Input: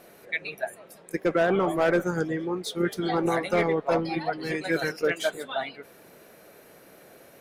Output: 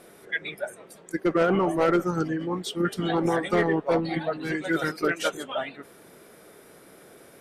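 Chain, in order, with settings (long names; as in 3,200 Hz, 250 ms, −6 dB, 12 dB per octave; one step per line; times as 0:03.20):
formants moved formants −2 semitones
level +1 dB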